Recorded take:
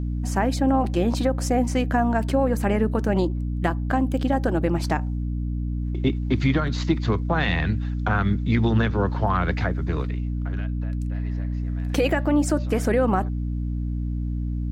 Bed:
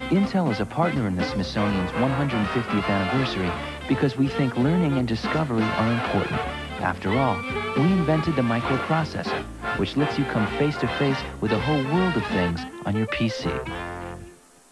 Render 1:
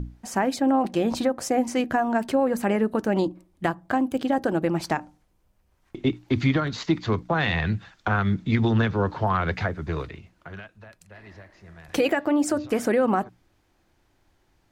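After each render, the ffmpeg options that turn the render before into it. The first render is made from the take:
-af "bandreject=f=60:t=h:w=6,bandreject=f=120:t=h:w=6,bandreject=f=180:t=h:w=6,bandreject=f=240:t=h:w=6,bandreject=f=300:t=h:w=6"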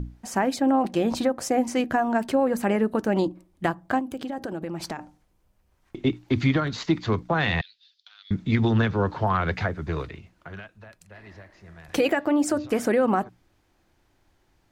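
-filter_complex "[0:a]asettb=1/sr,asplit=3[s0][s1][s2];[s0]atrim=end=3.994[s3];[s1]atrim=start=3.99:end=4.99,asetpts=PTS-STARTPTS,afade=t=in:d=0.004:c=qsin,afade=t=out:st=0.996:d=0.004:c=qsin,acompressor=threshold=0.0398:ratio=6:attack=3.2:release=140:knee=1:detection=peak[s4];[s2]atrim=start=4.986[s5];[s3][s4]acrossfade=d=0.004:c1=hsin:c2=qsin[s6];[s6][s5]acrossfade=d=0.004:c1=qsin:c2=hsin,asettb=1/sr,asplit=3[s7][s8][s9];[s7]atrim=end=7.614[s10];[s8]atrim=start=7.61:end=8.31,asetpts=PTS-STARTPTS,afade=t=in:d=0.004:c=qsin,afade=t=out:st=0.696:d=0.004:c=qsin,asuperpass=centerf=4200:order=4:qfactor=2.5[s11];[s9]atrim=start=8.306[s12];[s10][s11]acrossfade=d=0.004:c1=hsin:c2=qsin[s13];[s13][s12]acrossfade=d=0.004:c1=qsin:c2=hsin"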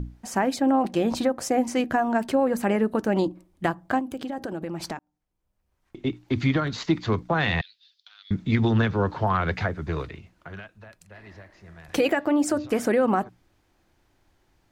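-filter_complex "[0:a]asplit=2[s0][s1];[s0]atrim=end=4.99,asetpts=PTS-STARTPTS,afade=t=out:st=4.986:d=0.004:c=hsin[s2];[s1]atrim=start=4.99,asetpts=PTS-STARTPTS,afade=t=in:d=1.69[s3];[s2][s3]concat=n=2:v=0:a=1"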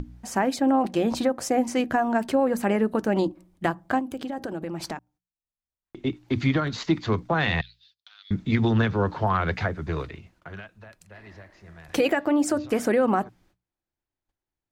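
-af "agate=range=0.0562:threshold=0.00112:ratio=16:detection=peak,bandreject=f=60:t=h:w=6,bandreject=f=120:t=h:w=6,bandreject=f=180:t=h:w=6"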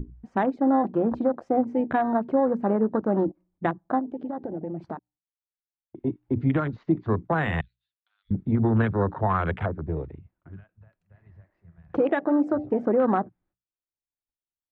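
-af "lowpass=1800,afwtdn=0.0282"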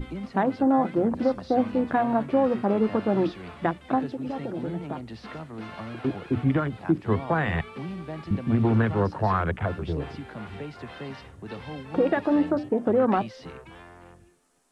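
-filter_complex "[1:a]volume=0.178[s0];[0:a][s0]amix=inputs=2:normalize=0"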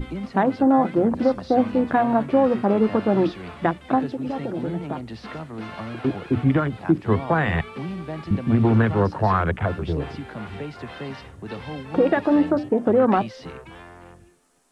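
-af "volume=1.58"

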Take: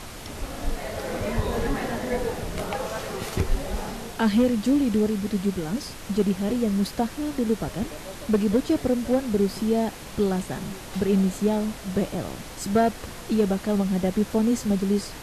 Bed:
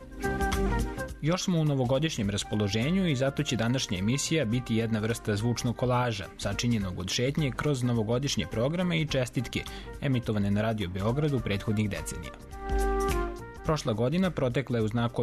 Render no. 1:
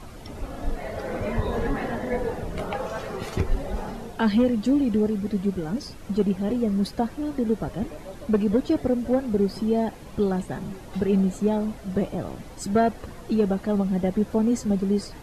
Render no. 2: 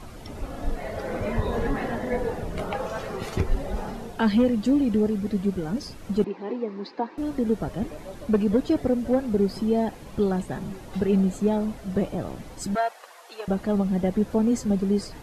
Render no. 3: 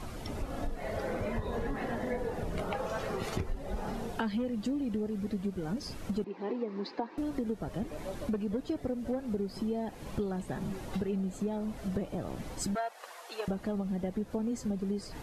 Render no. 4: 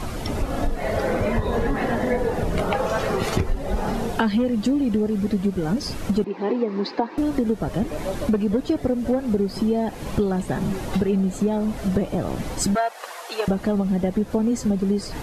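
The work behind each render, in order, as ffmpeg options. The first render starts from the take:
-af "afftdn=nr=11:nf=-39"
-filter_complex "[0:a]asettb=1/sr,asplit=3[s0][s1][s2];[s0]atrim=end=6.244[s3];[s1]atrim=start=6.24:end=7.18,asetpts=PTS-STARTPTS,afade=t=in:d=0.004:c=qsin,afade=t=out:st=0.936:d=0.004:c=qsin,highpass=f=300:w=0.5412,highpass=f=300:w=1.3066,equalizer=f=310:t=q:w=4:g=4,equalizer=f=610:t=q:w=4:g=-9,equalizer=f=950:t=q:w=4:g=6,equalizer=f=1400:t=q:w=4:g=-5,equalizer=f=3200:t=q:w=4:g=-9,lowpass=f=4100:w=0.5412,lowpass=f=4100:w=1.3066[s4];[s2]atrim=start=7.176[s5];[s3][s4]acrossfade=d=0.004:c1=hsin:c2=qsin[s6];[s6][s5]acrossfade=d=0.004:c1=qsin:c2=hsin,asettb=1/sr,asplit=3[s7][s8][s9];[s7]atrim=end=12.754[s10];[s8]atrim=start=12.75:end=13.48,asetpts=PTS-STARTPTS,afade=t=in:d=0.004:c=qsin,afade=t=out:st=0.726:d=0.004:c=qsin,highpass=f=650:w=0.5412,highpass=f=650:w=1.3066[s11];[s9]atrim=start=13.476[s12];[s10][s11]acrossfade=d=0.004:c1=hsin:c2=qsin[s13];[s13][s12]acrossfade=d=0.004:c1=qsin:c2=hsin"
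-af "acompressor=threshold=0.0282:ratio=6"
-af "volume=3.98"

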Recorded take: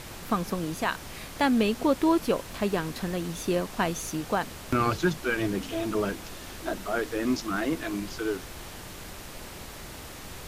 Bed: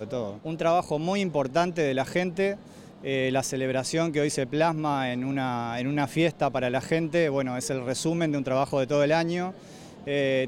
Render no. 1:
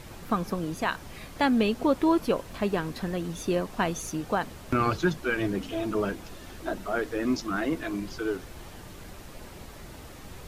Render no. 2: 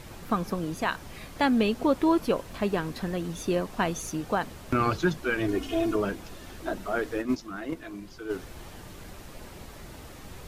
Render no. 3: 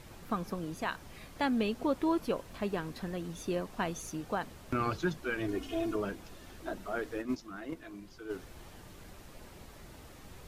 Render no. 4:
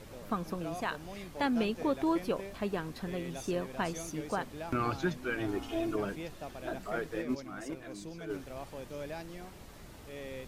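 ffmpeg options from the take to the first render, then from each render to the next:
-af "afftdn=nr=7:nf=-42"
-filter_complex "[0:a]asettb=1/sr,asplit=3[s0][s1][s2];[s0]atrim=end=5.484[s3];[s1]atrim=start=5.48:end=5.96,asetpts=PTS-STARTPTS,afade=t=in:d=0.004:c=qsin,afade=t=out:st=0.476:d=0.004:c=qsin,aecho=1:1:2.8:0.83,atrim=end_sample=21168[s4];[s2]atrim=start=5.956[s5];[s3][s4]acrossfade=d=0.004:c1=hsin:c2=qsin[s6];[s6][s5]acrossfade=d=0.004:c1=qsin:c2=hsin,asplit=3[s7][s8][s9];[s7]afade=t=out:st=7.21:d=0.02[s10];[s8]agate=range=0.398:threshold=0.0501:ratio=16:release=100:detection=peak,afade=t=in:st=7.21:d=0.02,afade=t=out:st=8.29:d=0.02[s11];[s9]afade=t=in:st=8.29:d=0.02[s12];[s10][s11][s12]amix=inputs=3:normalize=0"
-af "volume=0.447"
-filter_complex "[1:a]volume=0.112[s0];[0:a][s0]amix=inputs=2:normalize=0"

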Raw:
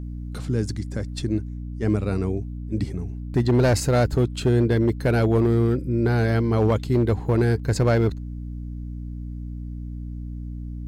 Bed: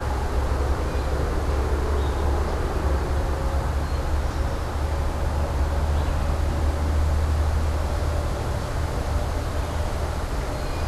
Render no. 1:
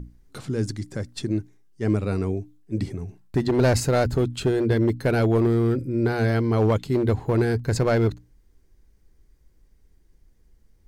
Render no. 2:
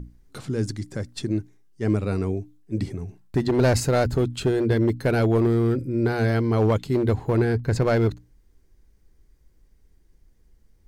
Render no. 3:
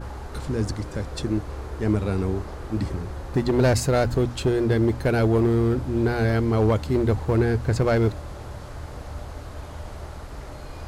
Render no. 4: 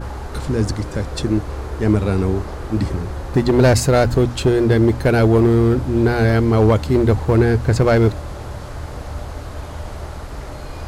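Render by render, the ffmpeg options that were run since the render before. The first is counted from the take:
-af "bandreject=f=60:t=h:w=6,bandreject=f=120:t=h:w=6,bandreject=f=180:t=h:w=6,bandreject=f=240:t=h:w=6,bandreject=f=300:t=h:w=6"
-filter_complex "[0:a]asettb=1/sr,asplit=3[s0][s1][s2];[s0]atrim=end=7.384[s3];[s1]atrim=start=7.38:end=7.82,asetpts=PTS-STARTPTS,afade=t=in:d=0.004:c=qsin,afade=t=out:st=0.436:d=0.004:c=qsin,bass=f=250:g=1,treble=f=4000:g=-6[s4];[s2]atrim=start=7.816[s5];[s3][s4]acrossfade=d=0.004:c1=hsin:c2=qsin[s6];[s6][s5]acrossfade=d=0.004:c1=qsin:c2=hsin"
-filter_complex "[1:a]volume=0.299[s0];[0:a][s0]amix=inputs=2:normalize=0"
-af "volume=2.11"

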